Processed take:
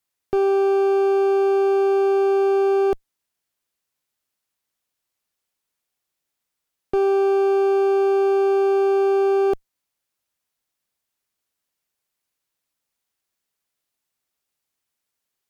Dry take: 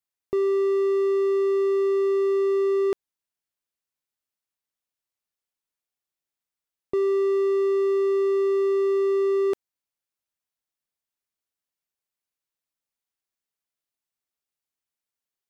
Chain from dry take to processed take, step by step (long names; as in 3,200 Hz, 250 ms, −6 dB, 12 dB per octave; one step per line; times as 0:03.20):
asymmetric clip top −31 dBFS, bottom −21 dBFS
level +8.5 dB